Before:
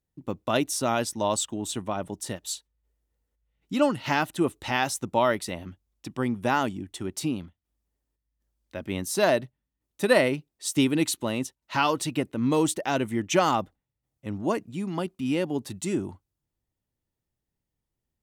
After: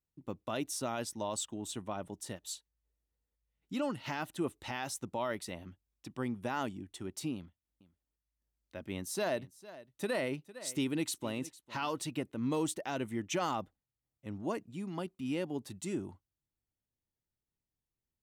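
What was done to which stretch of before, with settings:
0:07.35–0:12.06: single-tap delay 454 ms −19.5 dB
whole clip: brickwall limiter −15.5 dBFS; level −9 dB

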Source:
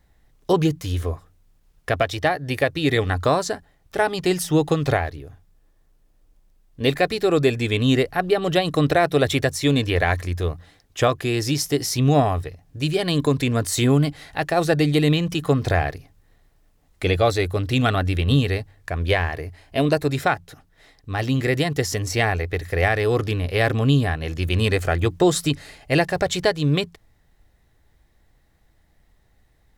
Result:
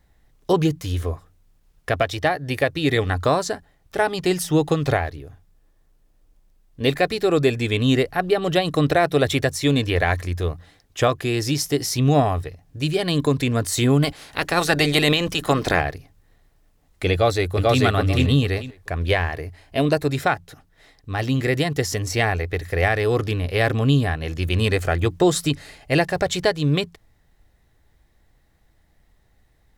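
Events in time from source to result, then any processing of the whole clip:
0:14.02–0:15.80: ceiling on every frequency bin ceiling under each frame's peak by 16 dB
0:17.13–0:17.82: delay throw 440 ms, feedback 20%, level −0.5 dB

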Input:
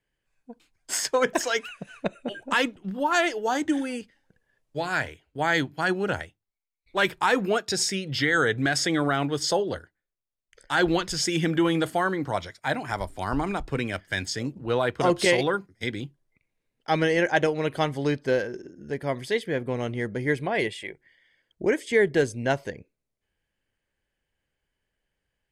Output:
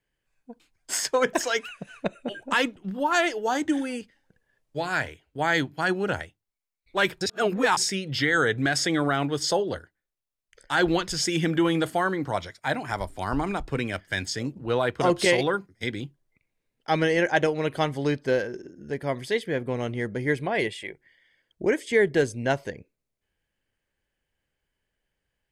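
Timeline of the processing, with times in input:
0:07.21–0:07.77: reverse

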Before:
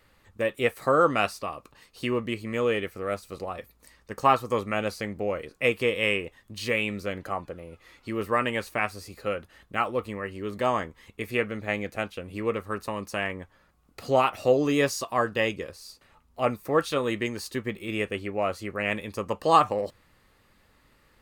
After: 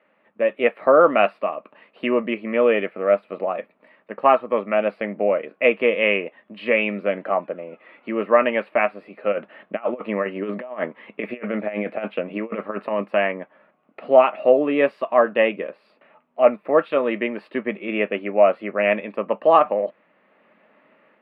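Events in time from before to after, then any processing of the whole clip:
0:09.32–0:13.02: compressor whose output falls as the input rises −33 dBFS, ratio −0.5
whole clip: elliptic band-pass filter 200–2,600 Hz, stop band 40 dB; parametric band 620 Hz +11 dB 0.29 octaves; automatic gain control gain up to 6.5 dB

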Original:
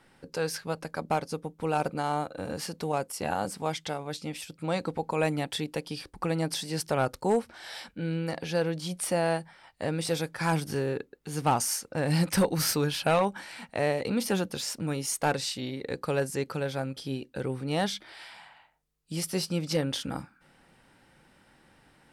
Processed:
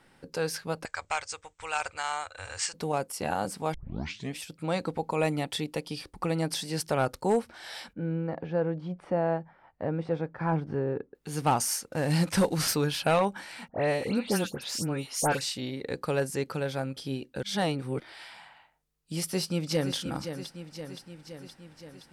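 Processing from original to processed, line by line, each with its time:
0:00.85–0:02.74: drawn EQ curve 100 Hz 0 dB, 150 Hz −26 dB, 250 Hz −28 dB, 380 Hz −17 dB, 970 Hz −1 dB, 2,100 Hz +8 dB, 4,600 Hz +3 dB, 8,000 Hz +14 dB, 12,000 Hz −29 dB
0:03.74: tape start 0.61 s
0:05.01–0:06.37: notch filter 1,600 Hz, Q 10
0:07.93–0:11.15: low-pass filter 1,200 Hz
0:11.92–0:12.68: variable-slope delta modulation 64 kbit/s
0:13.68–0:15.41: all-pass dispersion highs, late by 112 ms, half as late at 2,600 Hz
0:17.43–0:18.00: reverse
0:19.28–0:19.94: delay throw 520 ms, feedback 65%, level −9 dB

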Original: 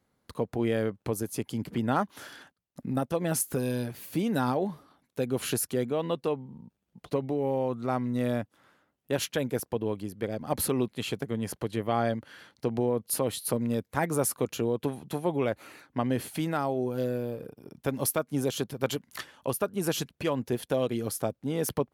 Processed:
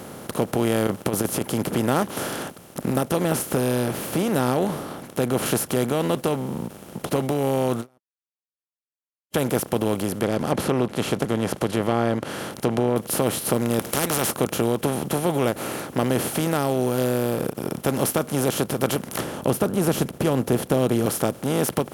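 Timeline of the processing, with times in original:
0:00.87–0:01.45: compressor whose output falls as the input rises −32 dBFS, ratio −0.5
0:03.24–0:05.46: high-shelf EQ 4,100 Hz −8 dB
0:07.98–0:09.34: silence
0:10.09–0:12.96: treble cut that deepens with the level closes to 1,800 Hz, closed at −23 dBFS
0:13.79–0:14.31: every bin compressed towards the loudest bin 4 to 1
0:19.19–0:21.06: tilt shelving filter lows +8 dB, about 670 Hz
whole clip: compressor on every frequency bin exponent 0.4; every ending faded ahead of time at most 400 dB per second

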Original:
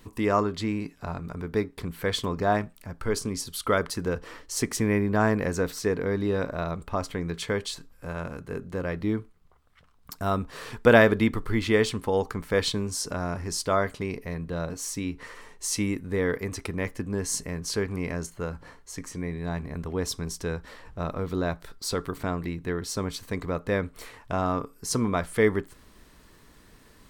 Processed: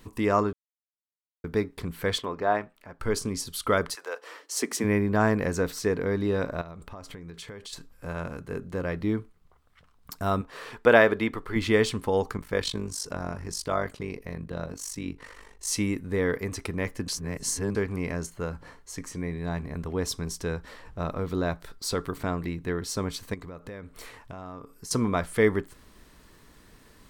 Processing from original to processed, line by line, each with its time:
0:00.53–0:01.44: silence
0:02.18–0:03.00: bass and treble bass −13 dB, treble −13 dB
0:03.94–0:04.83: high-pass filter 710 Hz → 190 Hz 24 dB per octave
0:06.61–0:07.73: downward compressor 8 to 1, threshold −38 dBFS
0:10.41–0:11.56: bass and treble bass −10 dB, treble −6 dB
0:12.37–0:15.67: amplitude modulation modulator 49 Hz, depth 65%
0:17.08–0:17.75: reverse
0:23.34–0:24.91: downward compressor 5 to 1, threshold −38 dBFS

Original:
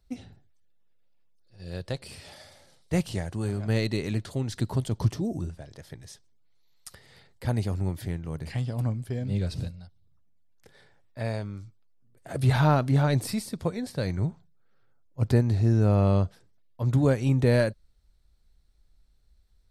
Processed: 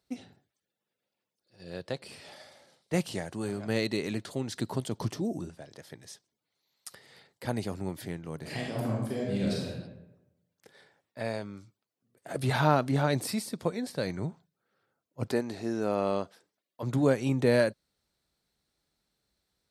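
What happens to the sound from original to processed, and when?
0:01.63–0:02.94: high-shelf EQ 5,200 Hz −6.5 dB
0:08.39–0:09.74: thrown reverb, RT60 0.98 s, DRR −3.5 dB
0:15.27–0:16.83: parametric band 110 Hz −13.5 dB 1.6 octaves
whole clip: high-pass filter 200 Hz 12 dB per octave

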